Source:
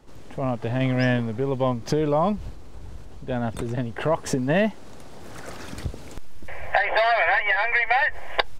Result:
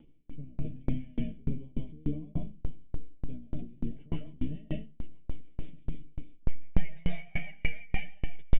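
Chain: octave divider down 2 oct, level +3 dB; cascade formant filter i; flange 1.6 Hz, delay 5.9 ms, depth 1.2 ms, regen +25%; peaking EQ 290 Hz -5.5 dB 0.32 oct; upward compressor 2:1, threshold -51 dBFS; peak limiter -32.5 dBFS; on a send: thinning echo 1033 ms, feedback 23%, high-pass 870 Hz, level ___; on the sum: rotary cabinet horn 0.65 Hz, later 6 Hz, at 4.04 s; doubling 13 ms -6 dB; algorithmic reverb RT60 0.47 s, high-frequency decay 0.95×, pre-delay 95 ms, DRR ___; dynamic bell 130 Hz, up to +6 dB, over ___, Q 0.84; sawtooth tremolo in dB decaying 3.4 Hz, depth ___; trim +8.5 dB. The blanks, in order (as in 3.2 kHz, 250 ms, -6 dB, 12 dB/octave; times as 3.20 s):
-14 dB, -1 dB, -53 dBFS, 33 dB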